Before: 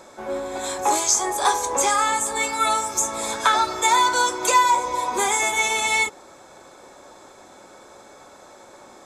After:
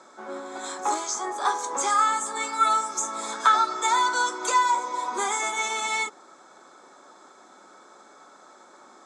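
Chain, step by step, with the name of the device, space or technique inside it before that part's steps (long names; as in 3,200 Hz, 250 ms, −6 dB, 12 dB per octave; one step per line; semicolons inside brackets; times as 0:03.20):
television speaker (loudspeaker in its box 190–8,700 Hz, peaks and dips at 540 Hz −5 dB, 1,300 Hz +8 dB, 2,600 Hz −6 dB)
0:00.94–0:01.59: high-shelf EQ 5,000 Hz −8.5 dB
level −5.5 dB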